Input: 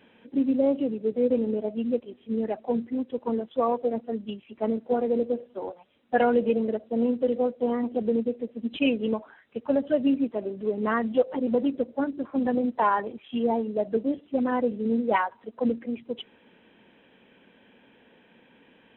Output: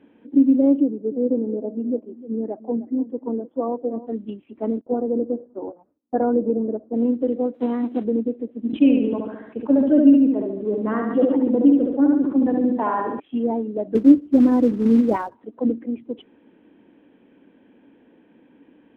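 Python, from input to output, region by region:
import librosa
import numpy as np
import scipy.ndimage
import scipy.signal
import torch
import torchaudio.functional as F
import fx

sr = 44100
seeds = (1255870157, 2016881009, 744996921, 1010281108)

y = fx.chain(x, sr, fx.lowpass(hz=1000.0, slope=12),
    fx.low_shelf(hz=90.0, db=-10.5),
    fx.echo_single(ms=306, db=-17.0), at=(0.8, 4.07))
y = fx.chain(y, sr, fx.lowpass(hz=1300.0, slope=24),
    fx.gate_hold(open_db=-45.0, close_db=-50.0, hold_ms=71.0, range_db=-21, attack_ms=1.4, release_ms=100.0), at=(4.81, 6.94))
y = fx.envelope_flatten(y, sr, power=0.6, at=(7.53, 8.03), fade=0.02)
y = fx.highpass(y, sr, hz=140.0, slope=12, at=(7.53, 8.03), fade=0.02)
y = fx.chain(y, sr, fx.echo_feedback(ms=71, feedback_pct=46, wet_db=-4.0),
    fx.sustainer(db_per_s=53.0), at=(8.66, 13.2))
y = fx.chain(y, sr, fx.tilt_eq(slope=-3.0),
    fx.quant_float(bits=2), at=(13.95, 15.35))
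y = fx.lowpass(y, sr, hz=1100.0, slope=6)
y = fx.peak_eq(y, sr, hz=300.0, db=13.5, octaves=0.48)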